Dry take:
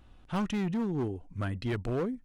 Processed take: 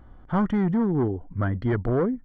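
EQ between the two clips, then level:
Savitzky-Golay smoothing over 41 samples
+8.0 dB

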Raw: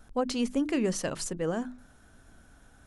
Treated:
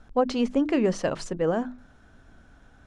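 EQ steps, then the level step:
dynamic equaliser 680 Hz, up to +5 dB, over −41 dBFS, Q 0.78
high-frequency loss of the air 110 metres
+3.0 dB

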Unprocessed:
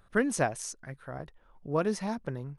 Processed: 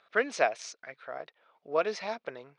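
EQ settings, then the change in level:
loudspeaker in its box 400–4,800 Hz, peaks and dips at 460 Hz +5 dB, 660 Hz +8 dB, 1,300 Hz +4 dB, 2,300 Hz +8 dB, 3,800 Hz +3 dB
high-shelf EQ 2,200 Hz +11 dB
−4.0 dB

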